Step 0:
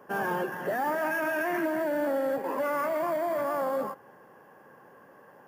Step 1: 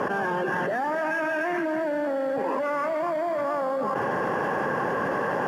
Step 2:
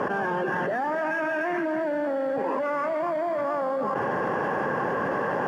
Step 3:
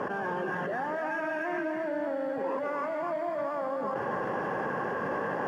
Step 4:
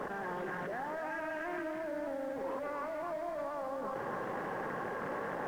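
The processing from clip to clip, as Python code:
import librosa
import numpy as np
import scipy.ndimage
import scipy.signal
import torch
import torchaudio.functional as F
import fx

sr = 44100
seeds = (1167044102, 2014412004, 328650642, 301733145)

y1 = scipy.signal.sosfilt(scipy.signal.butter(2, 6400.0, 'lowpass', fs=sr, output='sos'), x)
y1 = fx.env_flatten(y1, sr, amount_pct=100)
y2 = fx.high_shelf(y1, sr, hz=4600.0, db=-7.5)
y3 = y2 + 10.0 ** (-6.5 / 20.0) * np.pad(y2, (int(256 * sr / 1000.0), 0))[:len(y2)]
y3 = F.gain(torch.from_numpy(y3), -6.0).numpy()
y4 = fx.dmg_noise_colour(y3, sr, seeds[0], colour='pink', level_db=-55.0)
y4 = fx.doppler_dist(y4, sr, depth_ms=0.23)
y4 = F.gain(torch.from_numpy(y4), -6.5).numpy()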